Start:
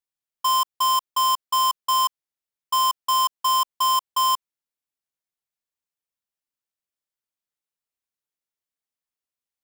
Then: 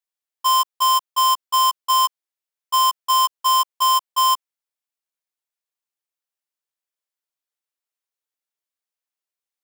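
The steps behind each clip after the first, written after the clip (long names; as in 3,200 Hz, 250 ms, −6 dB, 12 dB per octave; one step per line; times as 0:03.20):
high-pass filter 390 Hz 12 dB per octave
in parallel at +2 dB: output level in coarse steps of 20 dB
on the sum: level −3 dB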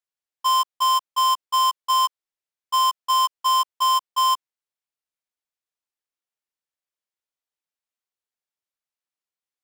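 high-shelf EQ 10,000 Hz −8.5 dB
level −2 dB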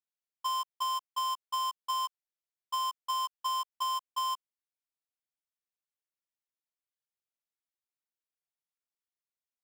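downward compressor, threshold −20 dBFS, peak gain reduction 4 dB
level −9 dB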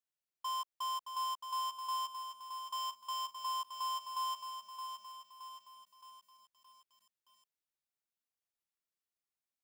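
brickwall limiter −30 dBFS, peak gain reduction 6.5 dB
feedback echo at a low word length 620 ms, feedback 55%, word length 10 bits, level −7 dB
level −2 dB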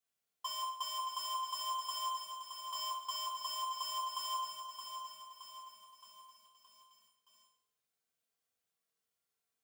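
convolution reverb RT60 0.65 s, pre-delay 3 ms, DRR −4.5 dB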